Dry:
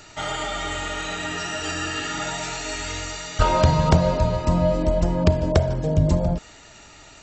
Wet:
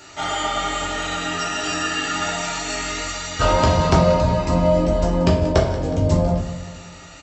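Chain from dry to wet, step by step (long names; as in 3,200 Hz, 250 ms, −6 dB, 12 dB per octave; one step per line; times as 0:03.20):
high-pass filter 64 Hz 12 dB per octave
parametric band 150 Hz −9.5 dB 0.49 octaves
on a send: repeating echo 183 ms, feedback 56%, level −15 dB
on the sum: rectangular room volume 57 cubic metres, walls mixed, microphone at 0.86 metres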